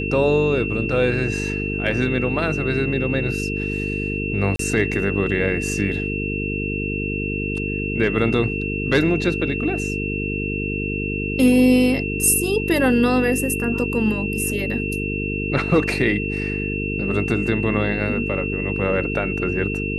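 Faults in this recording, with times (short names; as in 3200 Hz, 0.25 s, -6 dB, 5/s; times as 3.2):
buzz 50 Hz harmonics 9 -26 dBFS
tone 2700 Hz -27 dBFS
4.56–4.59 gap 33 ms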